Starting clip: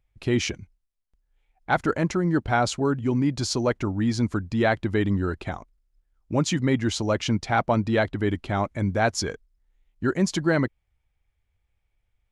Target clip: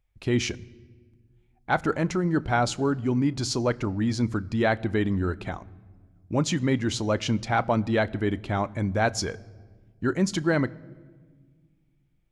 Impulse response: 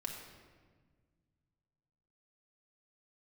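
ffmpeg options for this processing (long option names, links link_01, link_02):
-filter_complex "[0:a]asplit=2[link_01][link_02];[1:a]atrim=start_sample=2205,lowshelf=frequency=160:gain=10.5,adelay=32[link_03];[link_02][link_03]afir=irnorm=-1:irlink=0,volume=-18.5dB[link_04];[link_01][link_04]amix=inputs=2:normalize=0,volume=-1.5dB"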